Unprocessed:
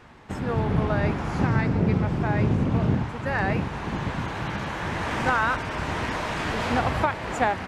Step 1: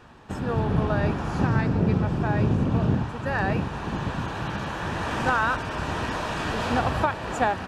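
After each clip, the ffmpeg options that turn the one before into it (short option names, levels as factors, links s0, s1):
-af "bandreject=f=2100:w=5.8"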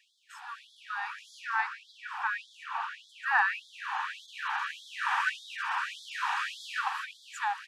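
-filter_complex "[0:a]acrossover=split=650|2500[s0][s1][s2];[s1]dynaudnorm=f=200:g=13:m=3.55[s3];[s0][s3][s2]amix=inputs=3:normalize=0,afftfilt=real='re*gte(b*sr/1024,720*pow(3300/720,0.5+0.5*sin(2*PI*1.7*pts/sr)))':imag='im*gte(b*sr/1024,720*pow(3300/720,0.5+0.5*sin(2*PI*1.7*pts/sr)))':win_size=1024:overlap=0.75,volume=0.531"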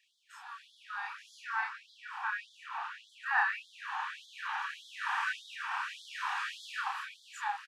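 -filter_complex "[0:a]asplit=2[s0][s1];[s1]adelay=29,volume=0.794[s2];[s0][s2]amix=inputs=2:normalize=0,volume=0.501"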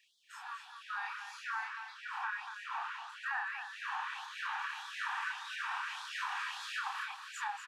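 -filter_complex "[0:a]acompressor=threshold=0.0141:ratio=6,asplit=2[s0][s1];[s1]aecho=0:1:238:0.398[s2];[s0][s2]amix=inputs=2:normalize=0,volume=1.26"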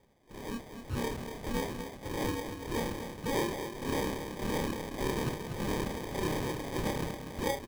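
-filter_complex "[0:a]asplit=2[s0][s1];[s1]adelay=28,volume=0.631[s2];[s0][s2]amix=inputs=2:normalize=0,acrusher=samples=32:mix=1:aa=0.000001,volume=1.68"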